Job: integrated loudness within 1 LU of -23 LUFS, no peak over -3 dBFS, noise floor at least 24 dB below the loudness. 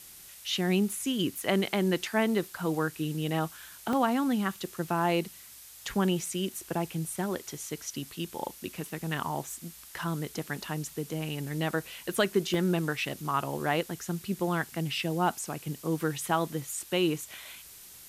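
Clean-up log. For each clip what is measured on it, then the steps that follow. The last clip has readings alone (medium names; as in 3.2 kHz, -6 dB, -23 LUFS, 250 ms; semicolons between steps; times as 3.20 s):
dropouts 7; longest dropout 2.2 ms; noise floor -50 dBFS; noise floor target -55 dBFS; loudness -31.0 LUFS; peak level -12.0 dBFS; loudness target -23.0 LUFS
-> interpolate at 3.93/6.26/9.17/10.39/11.12/12.54/16.62 s, 2.2 ms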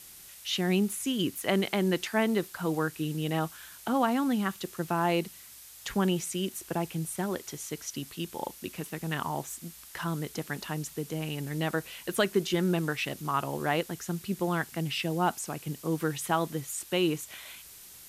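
dropouts 0; noise floor -50 dBFS; noise floor target -55 dBFS
-> noise print and reduce 6 dB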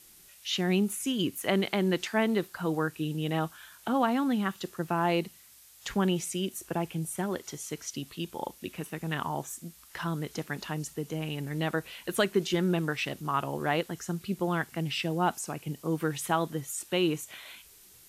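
noise floor -55 dBFS; loudness -31.0 LUFS; peak level -12.0 dBFS; loudness target -23.0 LUFS
-> trim +8 dB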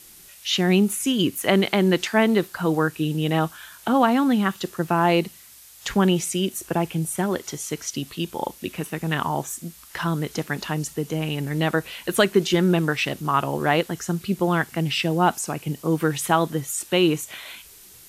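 loudness -23.0 LUFS; peak level -4.0 dBFS; noise floor -47 dBFS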